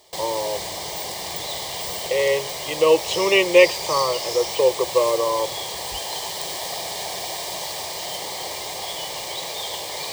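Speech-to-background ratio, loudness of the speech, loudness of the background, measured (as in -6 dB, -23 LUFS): 7.0 dB, -20.5 LUFS, -27.5 LUFS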